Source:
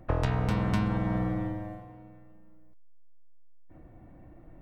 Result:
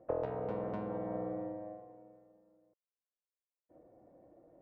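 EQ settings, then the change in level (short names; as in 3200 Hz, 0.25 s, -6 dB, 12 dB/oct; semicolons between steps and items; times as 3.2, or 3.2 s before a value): band-pass 520 Hz, Q 3; air absorption 51 m; +2.5 dB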